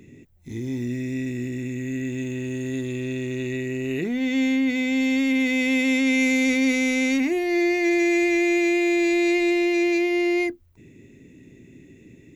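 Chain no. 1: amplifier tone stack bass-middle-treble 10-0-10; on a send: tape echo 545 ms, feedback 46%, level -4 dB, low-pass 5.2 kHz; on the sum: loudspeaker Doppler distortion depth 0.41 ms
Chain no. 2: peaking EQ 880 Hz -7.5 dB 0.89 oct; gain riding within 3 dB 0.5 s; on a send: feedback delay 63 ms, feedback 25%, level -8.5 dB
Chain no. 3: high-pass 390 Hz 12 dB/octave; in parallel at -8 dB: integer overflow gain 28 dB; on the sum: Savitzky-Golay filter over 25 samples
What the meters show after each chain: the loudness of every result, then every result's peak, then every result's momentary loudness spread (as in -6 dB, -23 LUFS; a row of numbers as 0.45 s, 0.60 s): -29.5 LUFS, -23.5 LUFS, -26.0 LUFS; -18.0 dBFS, -13.5 dBFS, -14.0 dBFS; 17 LU, 4 LU, 11 LU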